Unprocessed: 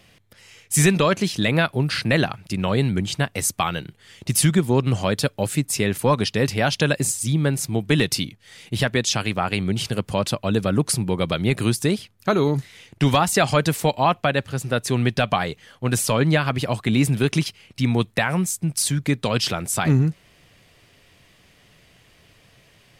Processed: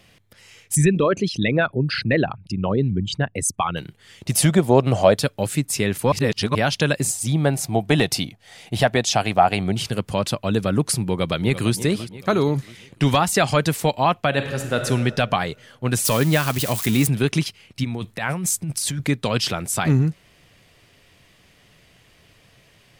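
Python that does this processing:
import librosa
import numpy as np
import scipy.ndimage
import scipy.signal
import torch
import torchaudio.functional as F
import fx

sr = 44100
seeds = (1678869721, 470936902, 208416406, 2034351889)

y = fx.envelope_sharpen(x, sr, power=2.0, at=(0.74, 3.76), fade=0.02)
y = fx.peak_eq(y, sr, hz=640.0, db=13.5, octaves=0.87, at=(4.31, 5.17))
y = fx.peak_eq(y, sr, hz=720.0, db=14.0, octaves=0.52, at=(7.1, 9.75))
y = fx.echo_throw(y, sr, start_s=11.08, length_s=0.66, ms=340, feedback_pct=50, wet_db=-13.0)
y = fx.reverb_throw(y, sr, start_s=14.28, length_s=0.58, rt60_s=1.7, drr_db=4.5)
y = fx.crossing_spikes(y, sr, level_db=-17.0, at=(16.05, 17.07))
y = fx.over_compress(y, sr, threshold_db=-26.0, ratio=-1.0, at=(17.83, 19.06), fade=0.02)
y = fx.edit(y, sr, fx.reverse_span(start_s=6.12, length_s=0.43), tone=tone)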